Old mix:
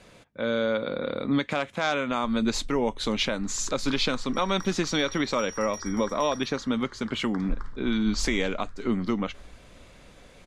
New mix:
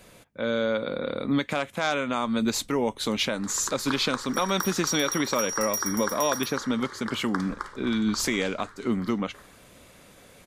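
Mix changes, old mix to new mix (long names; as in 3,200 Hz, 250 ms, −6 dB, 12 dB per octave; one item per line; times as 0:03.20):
first sound: add spectral tilt +3.5 dB per octave
second sound +11.0 dB
master: remove low-pass filter 6,500 Hz 12 dB per octave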